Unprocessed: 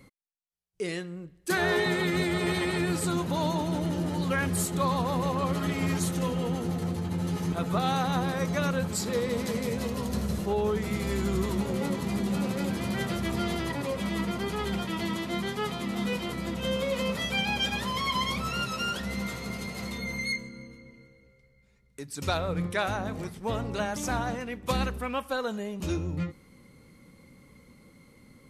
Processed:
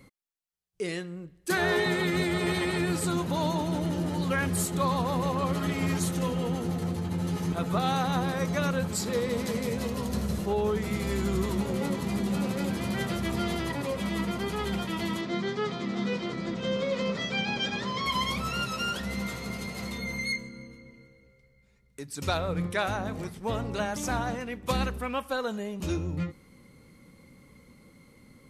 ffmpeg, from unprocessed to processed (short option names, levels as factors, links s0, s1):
-filter_complex "[0:a]asettb=1/sr,asplit=3[s0][s1][s2];[s0]atrim=end=15.214[s3];[s1]atrim=start=15.21:end=18.06,asetpts=PTS-STARTPTS,afade=t=in:d=0.004:c=qsin,afade=t=out:st=2.846:d=0.004:c=qsin,highpass=f=100:w=0.5412,highpass=f=100:w=1.3066,equalizer=f=390:t=q:w=4:g=4,equalizer=f=880:t=q:w=4:g=-4,equalizer=f=2800:t=q:w=4:g=-5,lowpass=f=6200:w=0.5412,lowpass=f=6200:w=1.3066[s4];[s2]atrim=start=18.056[s5];[s3][s4]acrossfade=d=0.004:c1=hsin:c2=qsin[s6];[s6][s5]acrossfade=d=0.004:c1=qsin:c2=hsin"